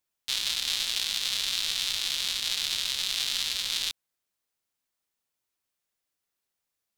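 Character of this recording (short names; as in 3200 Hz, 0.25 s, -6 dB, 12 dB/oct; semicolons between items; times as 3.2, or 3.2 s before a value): noise floor -85 dBFS; spectral tilt +1.0 dB/oct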